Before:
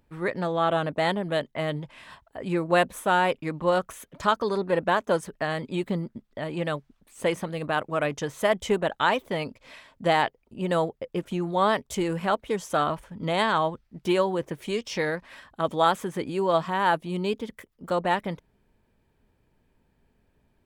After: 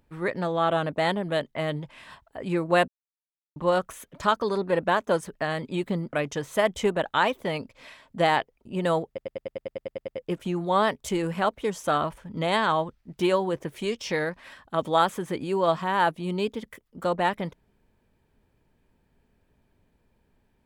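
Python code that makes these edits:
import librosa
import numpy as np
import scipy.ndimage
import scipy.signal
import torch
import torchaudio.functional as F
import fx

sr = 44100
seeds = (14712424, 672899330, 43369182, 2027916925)

y = fx.edit(x, sr, fx.silence(start_s=2.88, length_s=0.68),
    fx.cut(start_s=6.13, length_s=1.86),
    fx.stutter(start_s=10.94, slice_s=0.1, count=11), tone=tone)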